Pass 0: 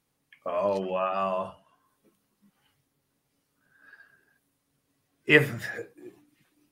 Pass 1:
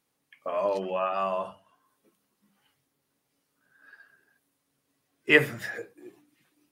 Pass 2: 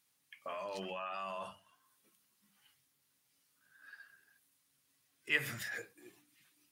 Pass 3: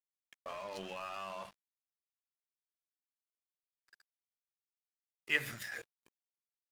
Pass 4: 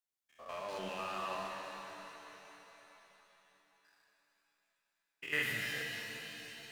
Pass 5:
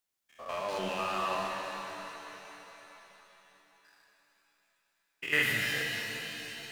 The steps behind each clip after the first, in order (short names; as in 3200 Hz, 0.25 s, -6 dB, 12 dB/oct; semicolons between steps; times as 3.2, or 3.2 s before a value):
low shelf 120 Hz -10.5 dB; notches 50/100/150/200 Hz
passive tone stack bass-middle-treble 5-5-5; in parallel at +2 dB: negative-ratio compressor -50 dBFS, ratio -1; on the sum: gain -2.5 dB
crossover distortion -50 dBFS; gain +1 dB
stepped spectrum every 0.1 s; shimmer reverb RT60 3.9 s, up +7 st, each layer -8 dB, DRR 0 dB; gain +1.5 dB
reverb RT60 0.60 s, pre-delay 5 ms, DRR 17 dB; gain +7 dB